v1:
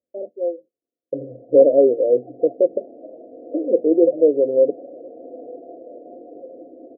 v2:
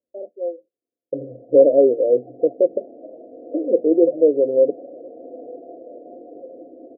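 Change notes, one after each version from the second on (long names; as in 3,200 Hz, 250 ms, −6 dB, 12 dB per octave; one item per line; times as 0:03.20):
first voice: add high-pass filter 480 Hz 6 dB per octave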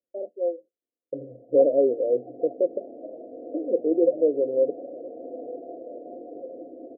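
second voice −6.5 dB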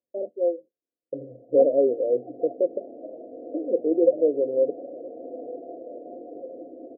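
first voice: remove high-pass filter 480 Hz 6 dB per octave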